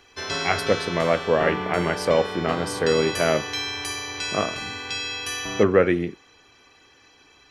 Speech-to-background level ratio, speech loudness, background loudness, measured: 5.0 dB, -23.5 LUFS, -28.5 LUFS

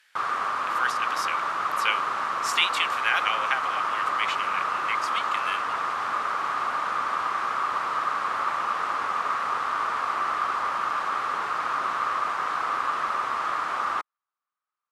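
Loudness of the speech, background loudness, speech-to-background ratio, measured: -29.0 LUFS, -26.5 LUFS, -2.5 dB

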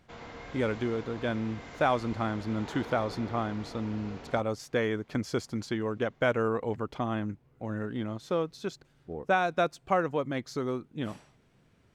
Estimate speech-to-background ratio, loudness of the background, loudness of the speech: 12.5 dB, -44.5 LUFS, -32.0 LUFS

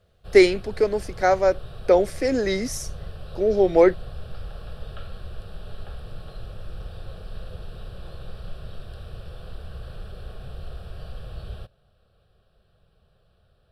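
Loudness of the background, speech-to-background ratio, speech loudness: -40.5 LUFS, 19.5 dB, -21.0 LUFS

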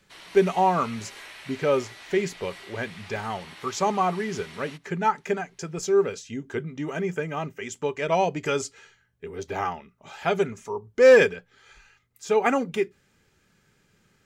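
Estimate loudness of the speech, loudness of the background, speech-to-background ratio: -25.5 LUFS, -43.5 LUFS, 18.0 dB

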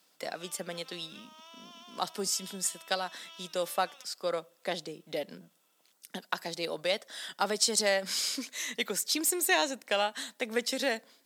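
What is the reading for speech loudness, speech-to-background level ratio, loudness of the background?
-31.5 LUFS, 20.0 dB, -51.5 LUFS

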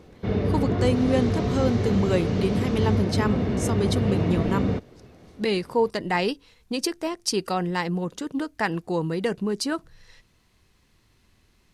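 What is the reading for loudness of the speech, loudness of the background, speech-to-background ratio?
-27.0 LUFS, -25.5 LUFS, -1.5 dB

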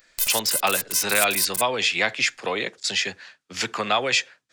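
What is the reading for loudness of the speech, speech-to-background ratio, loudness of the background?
-23.5 LUFS, 0.5 dB, -24.0 LUFS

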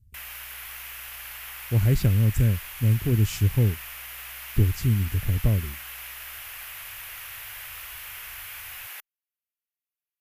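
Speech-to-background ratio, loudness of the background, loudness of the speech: 13.0 dB, -37.0 LUFS, -24.0 LUFS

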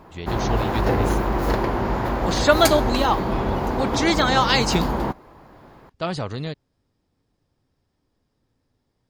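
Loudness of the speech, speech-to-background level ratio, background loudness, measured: -22.5 LUFS, 1.0 dB, -23.5 LUFS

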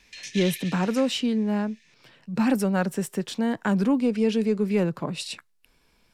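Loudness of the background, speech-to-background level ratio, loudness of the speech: -37.0 LUFS, 11.5 dB, -25.5 LUFS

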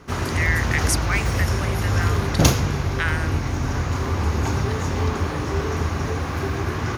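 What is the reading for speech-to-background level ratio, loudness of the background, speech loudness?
-4.5 dB, -23.0 LUFS, -27.5 LUFS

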